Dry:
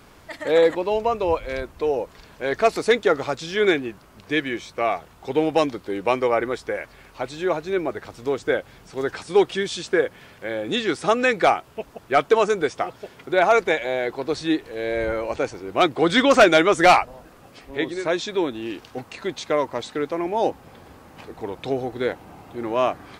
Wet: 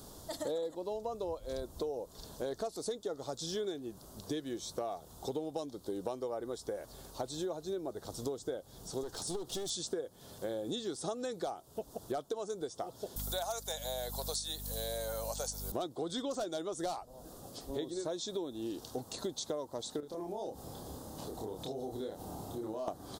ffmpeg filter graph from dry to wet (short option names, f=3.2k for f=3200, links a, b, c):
-filter_complex "[0:a]asettb=1/sr,asplit=3[a][b][c];[a]atrim=end=9.034[d];[b]atrim=start=9.03:end=9.7,asetpts=PTS-STARTPTS,afade=t=in:d=0.004:c=qsin,afade=t=out:st=0.666:d=0.004:c=qsin,acompressor=threshold=-21dB:ratio=6:attack=3.2:release=140:knee=1:detection=peak,aeval=exprs='clip(val(0),-1,0.0188)':c=same[e];[c]atrim=start=9.696[f];[d][e]acrossfade=d=0.004:c1=hsin:c2=qsin[g];[g][f]acrossfade=d=0.004:c1=qsin:c2=hsin,asettb=1/sr,asplit=3[h][i][j];[h]atrim=end=13.164[k];[i]atrim=start=13.16:end=15.72,asetpts=PTS-STARTPTS,afade=t=in:d=0.004:c=qsin,afade=t=out:st=2.556:d=0.004:c=qsin,highpass=f=540:w=0.5412,highpass=f=540:w=1.3066,aemphasis=mode=production:type=riaa,aeval=exprs='val(0)+0.0158*(sin(2*PI*50*n/s)+sin(2*PI*2*50*n/s)/2+sin(2*PI*3*50*n/s)/3+sin(2*PI*4*50*n/s)/4+sin(2*PI*5*50*n/s)/5)':c=same[l];[j]atrim=start=15.716[m];[k][l]acrossfade=d=0.004:c1=hsin:c2=qsin[n];[n][m]acrossfade=d=0.004:c1=qsin:c2=hsin,asettb=1/sr,asplit=3[o][p][q];[o]atrim=end=20.004[r];[p]atrim=start=20:end=22.88,asetpts=PTS-STARTPTS,afade=t=in:d=0.004:c=qsin,afade=t=out:st=2.876:d=0.004:c=qsin,asoftclip=type=hard:threshold=-11.5dB,acompressor=threshold=-37dB:ratio=4:attack=3.2:release=140:knee=1:detection=peak,asplit=2[s][t];[t]adelay=28,volume=-3dB[u];[s][u]amix=inputs=2:normalize=0,atrim=end_sample=127008[v];[q]atrim=start=22.876[w];[r][v]acrossfade=d=0.004:c1=hsin:c2=qsin[x];[x][w]acrossfade=d=0.004:c1=qsin:c2=hsin,firequalizer=gain_entry='entry(650,0);entry(2300,-22);entry(3500,1);entry(6700,7);entry(9600,9)':delay=0.05:min_phase=1,acompressor=threshold=-33dB:ratio=12,volume=-1.5dB"